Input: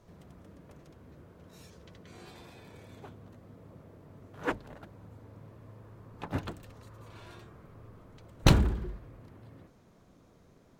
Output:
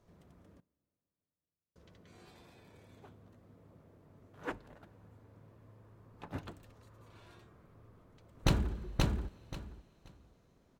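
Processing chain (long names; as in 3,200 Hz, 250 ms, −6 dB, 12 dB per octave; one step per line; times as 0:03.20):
0:00.60–0:01.76: log-companded quantiser 2 bits
0:07.81–0:08.75: delay throw 530 ms, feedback 20%, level −2 dB
coupled-rooms reverb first 0.3 s, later 4.4 s, from −18 dB, DRR 17 dB
level −8 dB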